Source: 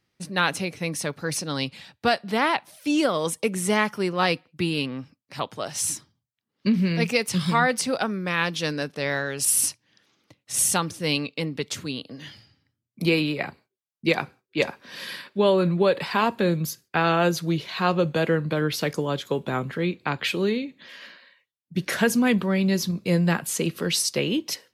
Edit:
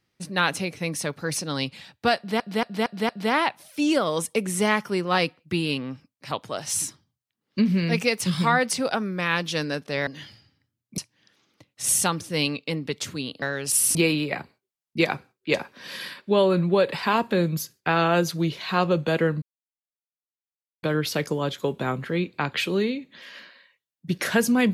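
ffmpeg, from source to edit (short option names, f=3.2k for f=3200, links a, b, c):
-filter_complex "[0:a]asplit=10[a][b][c][d][e][f][g][h][i][j];[a]atrim=end=2.402[k];[b]atrim=start=2.168:end=2.402[l];[c]atrim=start=2.168:end=2.402[m];[d]atrim=start=2.168:end=2.402[n];[e]atrim=start=2.168:end=9.152[o];[f]atrim=start=12.118:end=13.032[p];[g]atrim=start=9.678:end=12.122[q];[h]atrim=start=9.148:end=9.682[r];[i]atrim=start=13.028:end=18.5,asetpts=PTS-STARTPTS,afade=t=out:st=5.468:d=0.004:c=hsin,apad=pad_dur=1.41[s];[j]atrim=start=18.5,asetpts=PTS-STARTPTS,afade=t=in:d=0.004:c=hsin[t];[k][l]acrossfade=d=0.004:c1=hsin:c2=hsin[u];[u][m]acrossfade=d=0.004:c1=hsin:c2=hsin[v];[v][n]acrossfade=d=0.004:c1=hsin:c2=hsin[w];[w][o]acrossfade=d=0.004:c1=hsin:c2=hsin[x];[x][p]acrossfade=d=0.004:c1=hsin:c2=hsin[y];[y][q]acrossfade=d=0.004:c1=hsin:c2=hsin[z];[z][r]acrossfade=d=0.004:c1=hsin:c2=hsin[aa];[s][t]concat=n=2:v=0:a=1[ab];[aa][ab]acrossfade=d=0.004:c1=hsin:c2=hsin"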